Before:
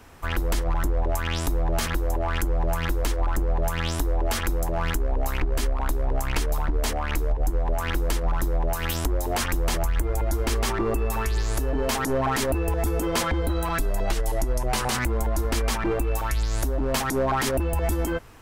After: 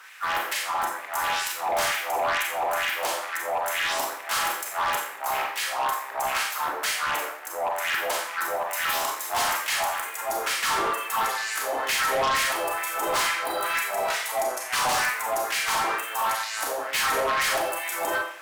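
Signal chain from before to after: harmony voices +3 st -8 dB; LFO high-pass sine 2.2 Hz 700–2200 Hz; Schroeder reverb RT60 0.54 s, combs from 29 ms, DRR 0 dB; in parallel at -12 dB: sine folder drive 14 dB, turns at -6 dBFS; on the sum: trim -8 dB

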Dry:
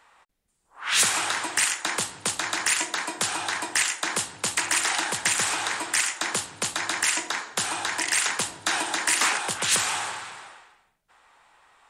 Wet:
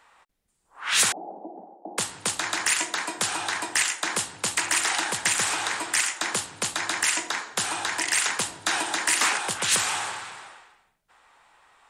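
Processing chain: 1.12–1.98 s: Chebyshev band-pass 180–800 Hz, order 5

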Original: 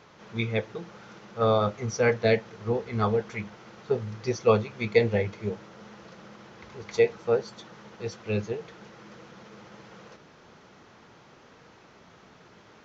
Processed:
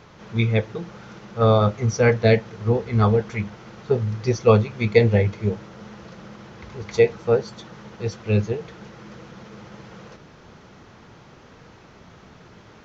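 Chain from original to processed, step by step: bass shelf 140 Hz +12 dB; trim +4 dB

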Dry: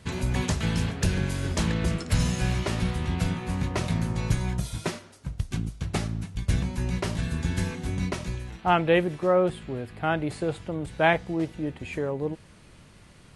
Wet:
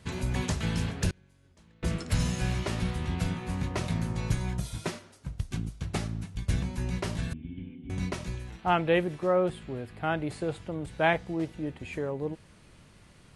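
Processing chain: 1.10–1.83 s: inverted gate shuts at -21 dBFS, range -30 dB; 7.33–7.90 s: cascade formant filter i; trim -3.5 dB

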